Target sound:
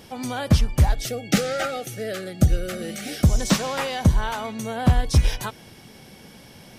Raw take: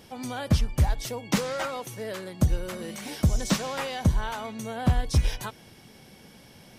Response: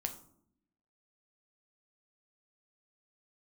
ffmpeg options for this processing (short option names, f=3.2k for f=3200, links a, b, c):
-filter_complex "[0:a]asettb=1/sr,asplit=3[a][b][c];[a]atrim=end=0.924[d];[b]atrim=start=0.92:end=3.24,asetpts=PTS-STARTPTS,afade=t=in:d=0.004:c=qsin,afade=t=out:st=2.316:d=0.004:c=qsin,asuperstop=centerf=980:order=20:qfactor=3[e];[c]atrim=start=3.236[f];[d][e]acrossfade=d=0.004:c1=hsin:c2=qsin[g];[g][f]acrossfade=d=0.004:c1=qsin:c2=hsin,volume=5dB"